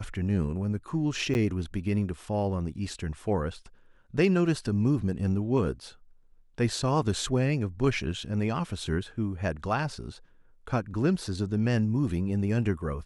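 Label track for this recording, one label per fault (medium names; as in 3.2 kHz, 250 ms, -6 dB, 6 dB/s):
1.340000	1.350000	dropout 9.9 ms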